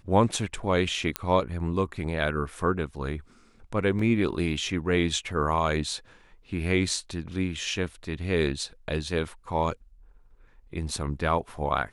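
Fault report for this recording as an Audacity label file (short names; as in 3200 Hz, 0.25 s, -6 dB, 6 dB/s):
1.160000	1.160000	pop -9 dBFS
3.990000	3.990000	gap 3.5 ms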